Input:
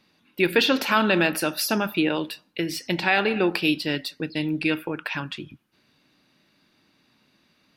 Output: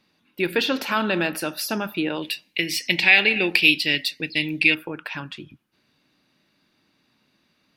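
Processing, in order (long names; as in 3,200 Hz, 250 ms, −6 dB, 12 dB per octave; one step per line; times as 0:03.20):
0:02.22–0:04.75: high shelf with overshoot 1,700 Hz +8 dB, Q 3
level −2.5 dB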